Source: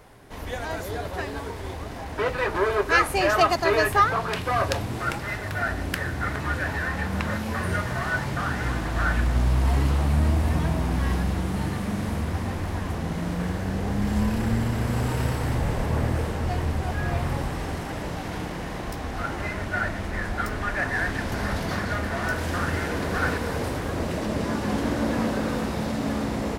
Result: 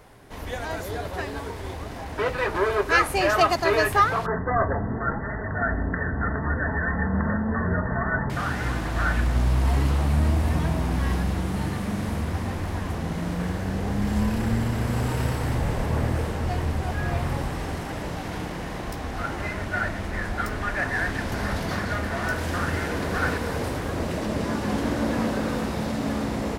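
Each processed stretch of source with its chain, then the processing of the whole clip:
0:04.26–0:08.30: linear-phase brick-wall low-pass 2,000 Hz + low-shelf EQ 320 Hz +4.5 dB + comb filter 4.5 ms, depth 40%
whole clip: no processing

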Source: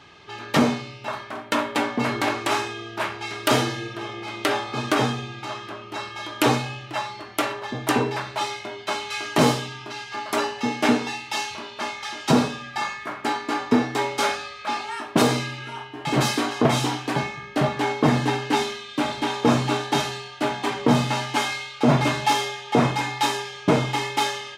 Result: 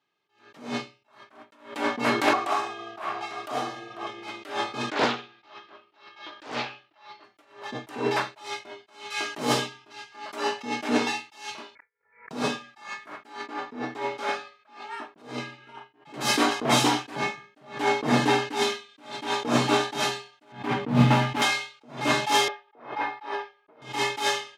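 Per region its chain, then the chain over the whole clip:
0:02.33–0:04.07: downward compressor 4 to 1, threshold −32 dBFS + high-shelf EQ 7,700 Hz −3.5 dB + hollow resonant body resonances 730/1,100 Hz, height 15 dB, ringing for 30 ms
0:04.90–0:07.24: low-pass filter 5,000 Hz 24 dB per octave + low-shelf EQ 230 Hz −11.5 dB + highs frequency-modulated by the lows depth 0.61 ms
0:11.75–0:12.31: parametric band 420 Hz +9 dB 2.5 octaves + gate with flip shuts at −15 dBFS, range −40 dB + voice inversion scrambler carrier 2,600 Hz
0:13.46–0:16.14: low-pass filter 2,700 Hz 6 dB per octave + downward compressor 1.5 to 1, threshold −29 dBFS
0:20.52–0:21.42: phase distortion by the signal itself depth 0.23 ms + bass and treble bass +14 dB, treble −13 dB + notch filter 380 Hz, Q 11
0:22.48–0:23.82: Savitzky-Golay smoothing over 15 samples + three-way crossover with the lows and the highs turned down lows −17 dB, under 340 Hz, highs −16 dB, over 2,000 Hz
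whole clip: high-pass filter 200 Hz 12 dB per octave; downward expander −26 dBFS; level that may rise only so fast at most 130 dB per second; level +4 dB

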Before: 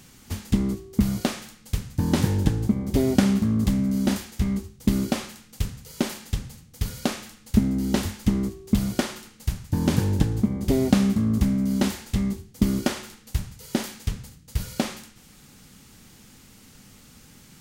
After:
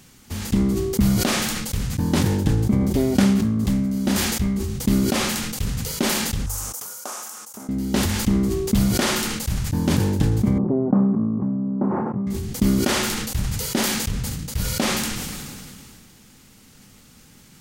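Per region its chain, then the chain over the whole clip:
0:06.46–0:07.69: high-pass filter 870 Hz + flat-topped bell 2,800 Hz −15 dB
0:10.58–0:12.27: elliptic band-pass filter 130–1,100 Hz, stop band 50 dB + high-frequency loss of the air 80 metres
whole clip: mains-hum notches 50/100 Hz; level that may fall only so fast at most 23 dB per second

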